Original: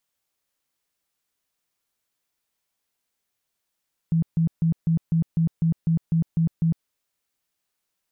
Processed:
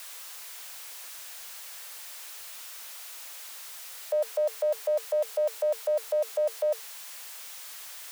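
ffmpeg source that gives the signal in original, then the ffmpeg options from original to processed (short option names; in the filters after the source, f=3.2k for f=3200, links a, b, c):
-f lavfi -i "aevalsrc='0.141*sin(2*PI*164*mod(t,0.25))*lt(mod(t,0.25),17/164)':d=2.75:s=44100"
-af "aeval=exprs='val(0)+0.5*0.015*sgn(val(0))':c=same,lowshelf=f=350:g=-6,afreqshift=440"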